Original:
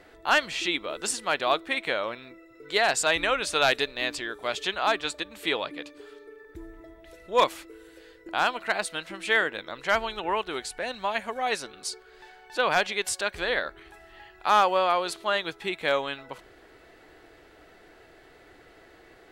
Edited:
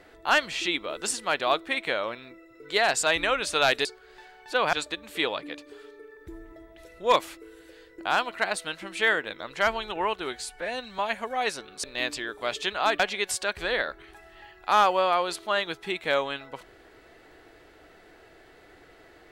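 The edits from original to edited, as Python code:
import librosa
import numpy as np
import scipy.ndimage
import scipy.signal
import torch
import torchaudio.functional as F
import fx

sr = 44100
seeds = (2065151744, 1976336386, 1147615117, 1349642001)

y = fx.edit(x, sr, fx.swap(start_s=3.85, length_s=1.16, other_s=11.89, other_length_s=0.88),
    fx.stretch_span(start_s=10.59, length_s=0.45, factor=1.5), tone=tone)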